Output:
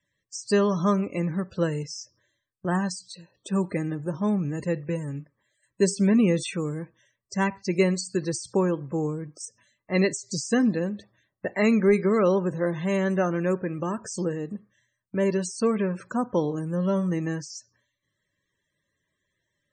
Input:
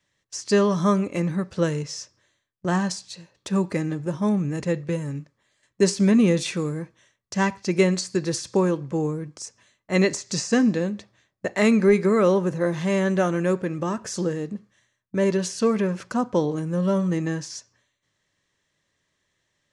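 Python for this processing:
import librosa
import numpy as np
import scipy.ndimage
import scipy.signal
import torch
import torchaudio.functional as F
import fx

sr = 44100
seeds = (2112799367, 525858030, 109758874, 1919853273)

y = fx.peak_eq(x, sr, hz=8400.0, db=9.0, octaves=0.23)
y = fx.spec_topn(y, sr, count=64)
y = y * librosa.db_to_amplitude(-2.5)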